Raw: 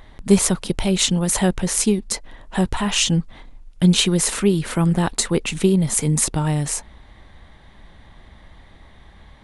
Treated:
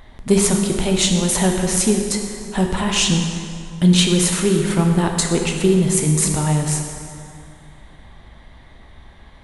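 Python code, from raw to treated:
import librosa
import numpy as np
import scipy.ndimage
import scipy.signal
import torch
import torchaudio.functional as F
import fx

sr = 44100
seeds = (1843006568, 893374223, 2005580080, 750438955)

y = fx.rev_plate(x, sr, seeds[0], rt60_s=2.4, hf_ratio=0.7, predelay_ms=0, drr_db=2.0)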